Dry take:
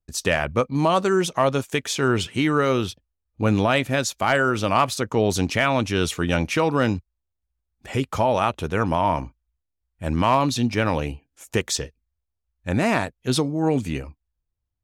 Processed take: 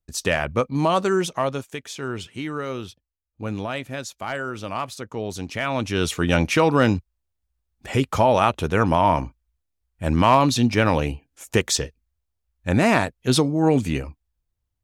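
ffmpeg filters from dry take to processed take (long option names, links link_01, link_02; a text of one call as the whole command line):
ffmpeg -i in.wav -af "volume=11.5dB,afade=type=out:start_time=1.12:duration=0.64:silence=0.375837,afade=type=in:start_time=5.47:duration=0.93:silence=0.251189" out.wav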